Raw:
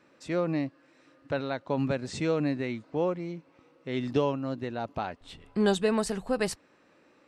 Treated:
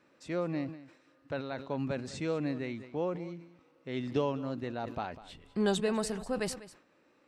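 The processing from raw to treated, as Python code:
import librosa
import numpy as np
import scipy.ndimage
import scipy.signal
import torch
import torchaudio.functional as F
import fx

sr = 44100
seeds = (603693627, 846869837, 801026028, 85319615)

y = fx.rider(x, sr, range_db=10, speed_s=2.0)
y = y + 10.0 ** (-17.0 / 20.0) * np.pad(y, (int(199 * sr / 1000.0), 0))[:len(y)]
y = fx.sustainer(y, sr, db_per_s=99.0)
y = y * librosa.db_to_amplitude(-5.5)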